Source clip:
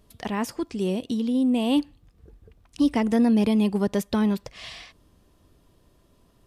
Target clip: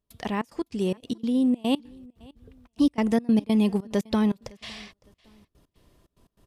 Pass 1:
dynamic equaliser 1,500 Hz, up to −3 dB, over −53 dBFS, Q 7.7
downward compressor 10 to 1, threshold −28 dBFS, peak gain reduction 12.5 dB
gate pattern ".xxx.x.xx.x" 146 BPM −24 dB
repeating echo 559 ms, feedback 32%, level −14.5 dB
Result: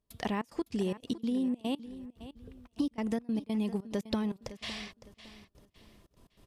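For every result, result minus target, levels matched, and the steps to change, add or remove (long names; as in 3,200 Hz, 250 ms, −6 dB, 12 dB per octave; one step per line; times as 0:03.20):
downward compressor: peak gain reduction +12.5 dB; echo-to-direct +10.5 dB
remove: downward compressor 10 to 1, threshold −28 dBFS, peak gain reduction 12.5 dB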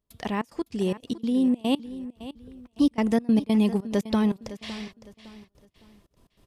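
echo-to-direct +10.5 dB
change: repeating echo 559 ms, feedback 32%, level −25 dB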